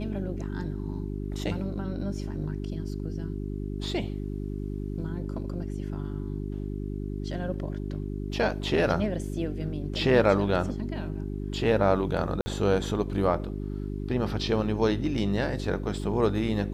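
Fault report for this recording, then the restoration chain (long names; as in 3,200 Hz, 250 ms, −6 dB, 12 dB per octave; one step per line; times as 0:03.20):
mains hum 50 Hz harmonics 8 −33 dBFS
0:12.41–0:12.46: drop-out 50 ms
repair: hum removal 50 Hz, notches 8
repair the gap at 0:12.41, 50 ms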